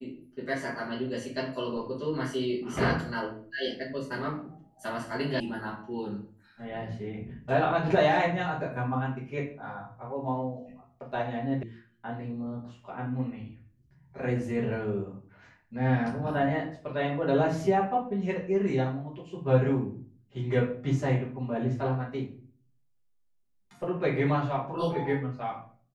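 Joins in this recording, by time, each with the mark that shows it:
5.40 s: sound stops dead
11.63 s: sound stops dead

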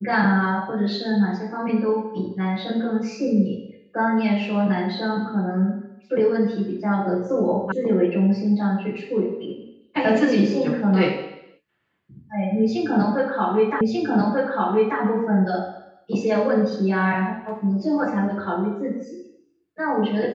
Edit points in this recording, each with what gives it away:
7.72 s: sound stops dead
13.81 s: repeat of the last 1.19 s

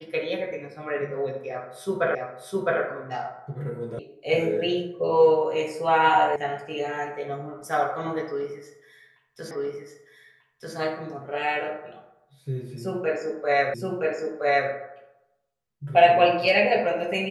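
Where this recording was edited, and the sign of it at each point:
2.15 s: repeat of the last 0.66 s
3.99 s: sound stops dead
6.36 s: sound stops dead
9.51 s: repeat of the last 1.24 s
13.74 s: repeat of the last 0.97 s

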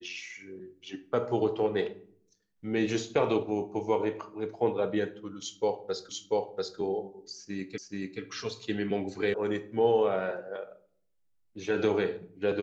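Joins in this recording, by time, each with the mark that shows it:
6.09 s: repeat of the last 0.69 s
7.78 s: repeat of the last 0.43 s
9.34 s: sound stops dead

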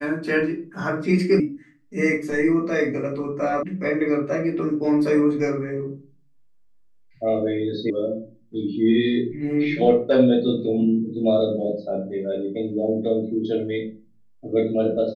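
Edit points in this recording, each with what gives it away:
1.40 s: sound stops dead
3.63 s: sound stops dead
7.90 s: sound stops dead

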